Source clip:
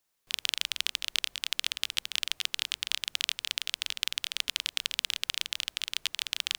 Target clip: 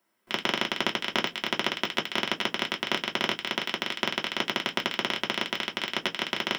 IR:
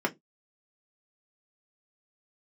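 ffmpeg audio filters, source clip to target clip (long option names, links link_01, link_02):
-filter_complex "[0:a]aeval=exprs='clip(val(0),-1,0.106)':channel_layout=same[link_01];[1:a]atrim=start_sample=2205[link_02];[link_01][link_02]afir=irnorm=-1:irlink=0"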